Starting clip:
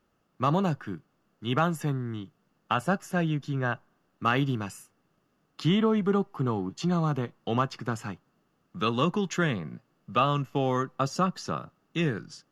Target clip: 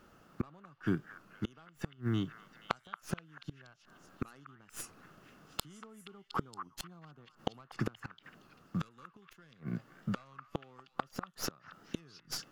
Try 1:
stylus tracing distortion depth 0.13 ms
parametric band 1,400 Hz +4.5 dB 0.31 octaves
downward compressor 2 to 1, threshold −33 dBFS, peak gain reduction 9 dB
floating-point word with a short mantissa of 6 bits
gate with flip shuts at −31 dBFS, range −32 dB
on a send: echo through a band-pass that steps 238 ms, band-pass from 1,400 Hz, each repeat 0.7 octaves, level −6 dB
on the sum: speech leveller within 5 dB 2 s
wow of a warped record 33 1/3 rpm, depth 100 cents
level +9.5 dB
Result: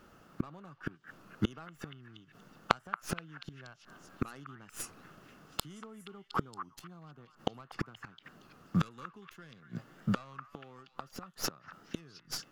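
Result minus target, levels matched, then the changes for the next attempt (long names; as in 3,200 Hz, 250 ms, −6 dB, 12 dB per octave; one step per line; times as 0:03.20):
downward compressor: peak gain reduction −4 dB
change: downward compressor 2 to 1, threshold −40.5 dBFS, peak gain reduction 12.5 dB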